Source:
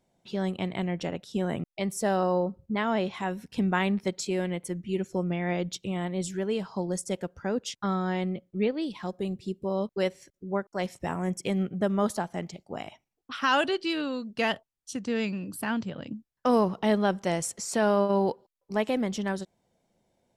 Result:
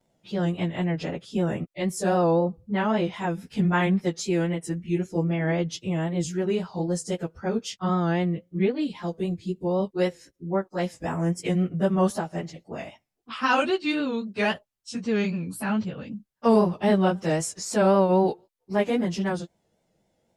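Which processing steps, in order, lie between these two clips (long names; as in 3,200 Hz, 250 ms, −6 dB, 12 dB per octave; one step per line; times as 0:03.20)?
phase-vocoder pitch shift without resampling −1 semitone
pitch vibrato 3.8 Hz 69 cents
level +5 dB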